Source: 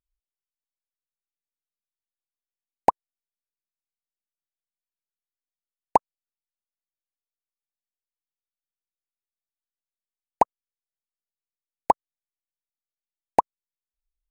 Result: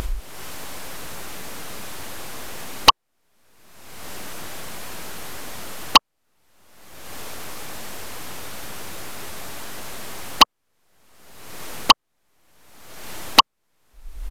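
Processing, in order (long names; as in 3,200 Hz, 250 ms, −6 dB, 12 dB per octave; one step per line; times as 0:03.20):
high-shelf EQ 2,100 Hz −12 dB
in parallel at −1 dB: brickwall limiter −14 dBFS, peak gain reduction 8 dB
on the sum: upward compression, threshold −16 dBFS
sine wavefolder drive 18 dB, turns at 1.5 dBFS
downsampling to 32,000 Hz
level −3 dB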